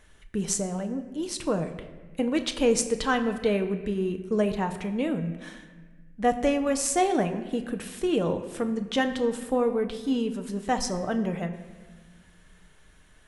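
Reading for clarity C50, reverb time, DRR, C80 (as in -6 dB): 10.5 dB, 1.4 s, 6.5 dB, 12.0 dB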